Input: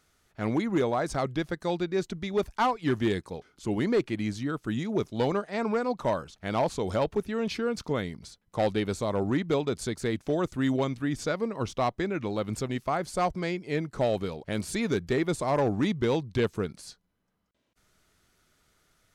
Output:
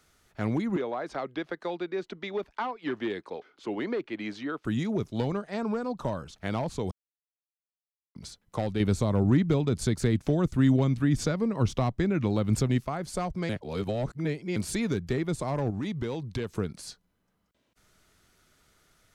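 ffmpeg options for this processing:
-filter_complex "[0:a]asettb=1/sr,asplit=3[a][b][c];[a]atrim=end=0.764[d];[b]atrim=start=0.76:end=4.65,asetpts=PTS-STARTPTS,afade=t=in:d=0.004:c=qsin,afade=t=out:st=3.886:d=0.004:c=qsin,acrossover=split=270 4300:gain=0.0708 1 0.1[e][f][g];[e][f][g]amix=inputs=3:normalize=0[h];[c]atrim=start=4.646[i];[d][h]acrossfade=d=0.004:c1=hsin:c2=qsin[j];[j][i]acrossfade=d=0.004:c1=qsin:c2=hsin,asettb=1/sr,asplit=3[k][l][m];[k]atrim=end=5.544[n];[l]atrim=start=5.54:end=6.15,asetpts=PTS-STARTPTS,afade=t=in:d=0.004:c=qsin,afade=t=out:st=0.606:d=0.004:c=qsin,equalizer=f=2.1k:w=4.4:g=-9[o];[m]atrim=start=6.146[p];[n][o]acrossfade=d=0.004:c1=hsin:c2=qsin[q];[q][p]acrossfade=d=0.004:c1=qsin:c2=hsin,asettb=1/sr,asplit=3[r][s][t];[r]atrim=end=15.704[u];[s]atrim=start=15.7:end=16.57,asetpts=PTS-STARTPTS,afade=t=in:d=0.004:c=qsin,afade=t=out:st=0.866:d=0.004:c=qsin,acompressor=threshold=-30dB:ratio=6:attack=3.2:release=140:knee=1:detection=peak[v];[t]atrim=start=16.566[w];[u][v]acrossfade=d=0.004:c1=hsin:c2=qsin[x];[x][w]acrossfade=d=0.004:c1=qsin:c2=hsin,asplit=7[y][z][aa][ab][ac][ad][ae];[y]atrim=end=6.91,asetpts=PTS-STARTPTS,afade=t=out:st=6.906:d=0.004:c=hsin[af];[z]atrim=start=6.91:end=8.15,asetpts=PTS-STARTPTS,volume=0[ag];[aa]atrim=start=8.15:end=8.802,asetpts=PTS-STARTPTS,afade=t=in:d=0.004:c=hsin[ah];[ab]atrim=start=8.798:end=12.852,asetpts=PTS-STARTPTS,volume=7dB[ai];[ac]atrim=start=12.848:end=13.492[aj];[ad]atrim=start=13.488:end=14.562,asetpts=PTS-STARTPTS,areverse[ak];[ae]atrim=start=14.558[al];[af][ag][ah]concat=n=3:v=0:a=1[am];[am][ai]acrossfade=d=0.004:c1=hsin:c2=hsin[an];[an][aj]acrossfade=d=0.004:c1=hsin:c2=hsin[ao];[ao][ak]acrossfade=d=0.004:c1=hsin:c2=hsin[ap];[ap][al]acrossfade=d=0.004:c1=hsin:c2=hsin,acrossover=split=220[aq][ar];[ar]acompressor=threshold=-34dB:ratio=4[as];[aq][as]amix=inputs=2:normalize=0,volume=3dB"

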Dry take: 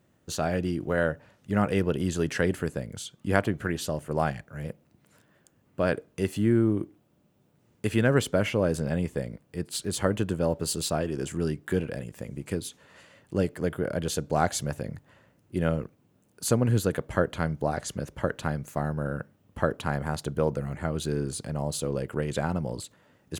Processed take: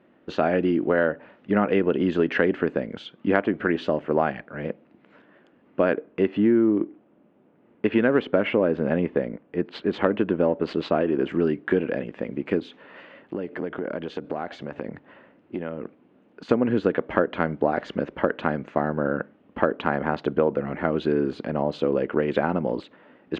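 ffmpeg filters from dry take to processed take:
-filter_complex "[0:a]asettb=1/sr,asplit=3[a][b][c];[a]atrim=end=5.934[d];[b]atrim=start=5.93:end=11.29,asetpts=PTS-STARTPTS,afade=t=in:d=0.004:c=qsin,afade=t=out:st=5.356:d=0.004:c=qsin,adynamicsmooth=sensitivity=5:basefreq=3.2k[e];[c]atrim=start=11.286[f];[d][e]acrossfade=d=0.004:c1=hsin:c2=qsin[g];[g][f]acrossfade=d=0.004:c1=qsin:c2=hsin,asettb=1/sr,asplit=3[h][i][j];[h]atrim=end=12.594[k];[i]atrim=start=12.59:end=16.49,asetpts=PTS-STARTPTS,afade=t=in:d=0.004:c=qsin,afade=t=out:st=3.896:d=0.004:c=qsin,acompressor=threshold=-33dB:ratio=10:attack=3.2:release=140:knee=1:detection=peak[l];[j]atrim=start=16.486[m];[k][l]acrossfade=d=0.004:c1=hsin:c2=qsin[n];[n][m]acrossfade=d=0.004:c1=qsin:c2=hsin,lowpass=f=2.9k:w=0.5412,lowpass=f=2.9k:w=1.3066,lowshelf=f=170:t=q:w=1.5:g=-13.5,acompressor=threshold=-26dB:ratio=3,volume=8.5dB"

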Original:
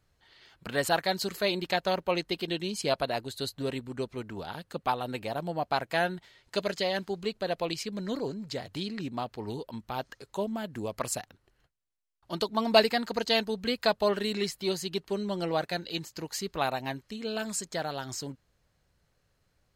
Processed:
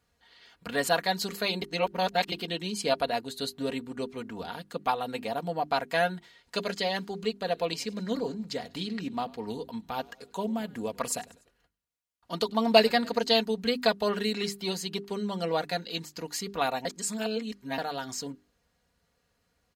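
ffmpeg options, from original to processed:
-filter_complex "[0:a]asplit=3[a][b][c];[a]afade=t=out:st=7.53:d=0.02[d];[b]asplit=4[e][f][g][h];[f]adelay=98,afreqshift=-61,volume=-23.5dB[i];[g]adelay=196,afreqshift=-122,volume=-29dB[j];[h]adelay=294,afreqshift=-183,volume=-34.5dB[k];[e][i][j][k]amix=inputs=4:normalize=0,afade=t=in:st=7.53:d=0.02,afade=t=out:st=13.17:d=0.02[l];[c]afade=t=in:st=13.17:d=0.02[m];[d][l][m]amix=inputs=3:normalize=0,asplit=5[n][o][p][q][r];[n]atrim=end=1.622[s];[o]atrim=start=1.618:end=2.322,asetpts=PTS-STARTPTS,areverse[t];[p]atrim=start=2.318:end=16.852[u];[q]atrim=start=16.848:end=17.782,asetpts=PTS-STARTPTS,areverse[v];[r]atrim=start=17.778[w];[s][t]acrossfade=d=0.004:c1=hsin:c2=hsin[x];[x][u]acrossfade=d=0.004:c1=hsin:c2=hsin[y];[y][v]acrossfade=d=0.004:c1=hsin:c2=hsin[z];[z][w]acrossfade=d=0.004:c1=hsin:c2=hsin,highpass=56,bandreject=f=50:t=h:w=6,bandreject=f=100:t=h:w=6,bandreject=f=150:t=h:w=6,bandreject=f=200:t=h:w=6,bandreject=f=250:t=h:w=6,bandreject=f=300:t=h:w=6,bandreject=f=350:t=h:w=6,bandreject=f=400:t=h:w=6,aecho=1:1:4.2:0.55"

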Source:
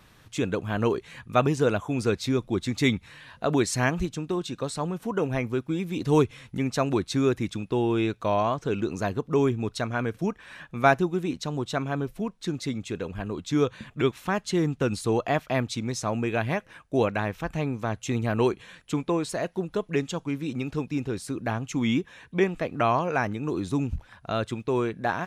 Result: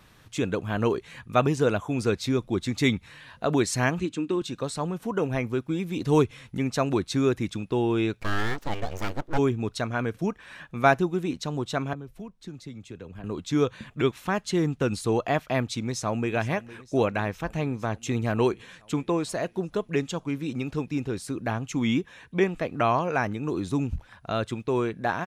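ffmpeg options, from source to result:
-filter_complex "[0:a]asettb=1/sr,asplit=3[a][b][c];[a]atrim=end=3.994[d];[b]atrim=start=3.99:end=4.42,asetpts=PTS-STARTPTS,afade=t=in:d=0.004:c=qsin,afade=t=out:st=0.426:d=0.004:c=qsin,highpass=130,equalizer=f=140:t=q:w=4:g=-7,equalizer=f=300:t=q:w=4:g=8,equalizer=f=700:t=q:w=4:g=-10,equalizer=f=2.6k:t=q:w=4:g=5,equalizer=f=5.6k:t=q:w=4:g=-7,lowpass=f=9.3k:w=0.5412,lowpass=f=9.3k:w=1.3066[e];[c]atrim=start=4.416[f];[d][e]acrossfade=d=0.004:c1=hsin:c2=qsin[g];[g][f]acrossfade=d=0.004:c1=qsin:c2=hsin,asplit=3[h][i][j];[h]afade=t=out:st=8.2:d=0.02[k];[i]aeval=exprs='abs(val(0))':c=same,afade=t=in:st=8.2:d=0.02,afade=t=out:st=9.37:d=0.02[l];[j]afade=t=in:st=9.37:d=0.02[m];[k][l][m]amix=inputs=3:normalize=0,asettb=1/sr,asplit=3[n][o][p];[n]atrim=end=11.934[q];[o]atrim=start=11.93:end=13.24,asetpts=PTS-STARTPTS,afade=t=in:d=0.004:c=qsin,afade=t=out:st=1.306:d=0.004:c=qsin,acrossover=split=130|560[r][s][t];[r]acompressor=threshold=-46dB:ratio=4[u];[s]acompressor=threshold=-42dB:ratio=4[v];[t]acompressor=threshold=-51dB:ratio=4[w];[u][v][w]amix=inputs=3:normalize=0[x];[p]atrim=start=13.236[y];[q][x]acrossfade=d=0.004:c1=hsin:c2=qsin[z];[z][y]acrossfade=d=0.004:c1=qsin:c2=hsin,asplit=2[aa][ab];[ab]afade=t=in:st=15.8:d=0.01,afade=t=out:st=16.34:d=0.01,aecho=0:1:460|920|1380|1840|2300|2760|3220|3680|4140|4600:0.133352|0.100014|0.0750106|0.0562579|0.0421935|0.0316451|0.0237338|0.0178004|0.0133503|0.0100127[ac];[aa][ac]amix=inputs=2:normalize=0"

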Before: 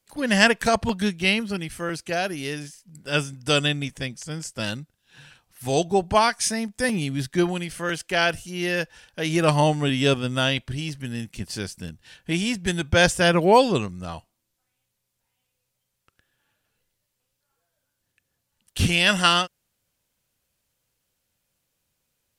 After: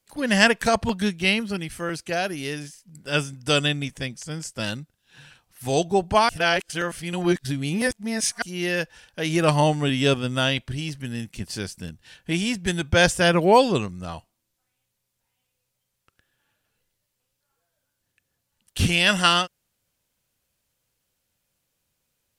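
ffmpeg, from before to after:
-filter_complex "[0:a]asplit=3[a][b][c];[a]atrim=end=6.292[d];[b]atrim=start=6.288:end=8.422,asetpts=PTS-STARTPTS,areverse[e];[c]atrim=start=8.418[f];[d][e]acrossfade=d=0.004:c1=hsin:c2=hsin[g];[g][f]acrossfade=d=0.004:c1=hsin:c2=hsin"

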